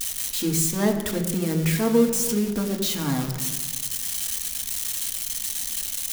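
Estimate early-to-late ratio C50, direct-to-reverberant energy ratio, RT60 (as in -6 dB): 7.5 dB, 2.0 dB, 1.5 s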